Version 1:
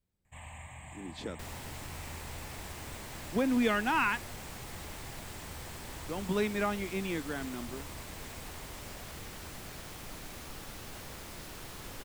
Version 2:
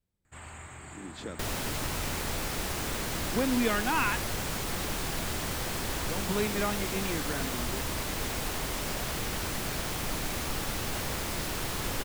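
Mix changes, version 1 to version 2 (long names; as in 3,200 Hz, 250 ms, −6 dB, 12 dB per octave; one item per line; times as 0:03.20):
first sound: remove phaser with its sweep stopped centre 1,400 Hz, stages 6
second sound +12.0 dB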